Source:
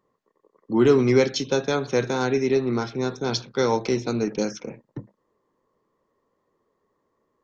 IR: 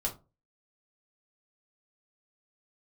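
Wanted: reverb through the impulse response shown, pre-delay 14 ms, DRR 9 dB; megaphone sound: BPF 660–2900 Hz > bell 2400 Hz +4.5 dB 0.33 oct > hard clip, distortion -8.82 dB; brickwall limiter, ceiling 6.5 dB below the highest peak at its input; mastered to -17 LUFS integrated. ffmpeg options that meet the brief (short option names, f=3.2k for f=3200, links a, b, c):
-filter_complex "[0:a]alimiter=limit=-13dB:level=0:latency=1,asplit=2[a][b];[1:a]atrim=start_sample=2205,adelay=14[c];[b][c]afir=irnorm=-1:irlink=0,volume=-12.5dB[d];[a][d]amix=inputs=2:normalize=0,highpass=660,lowpass=2.9k,equalizer=f=2.4k:t=o:w=0.33:g=4.5,asoftclip=type=hard:threshold=-28dB,volume=17dB"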